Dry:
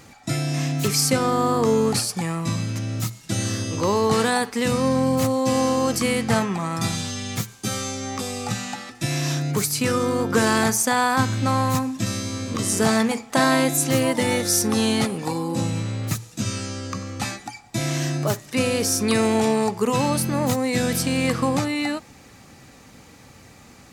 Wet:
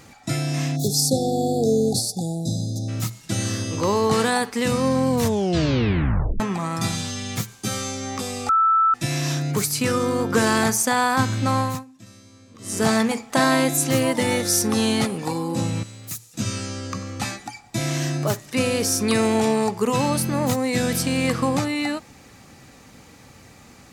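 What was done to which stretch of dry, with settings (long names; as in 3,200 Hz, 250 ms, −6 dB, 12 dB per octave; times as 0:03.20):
0:00.76–0:02.88: time-frequency box erased 820–3,400 Hz
0:05.09: tape stop 1.31 s
0:08.49–0:08.94: beep over 1,320 Hz −14 dBFS
0:11.59–0:12.86: duck −20.5 dB, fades 0.26 s
0:15.83–0:16.34: first-order pre-emphasis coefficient 0.8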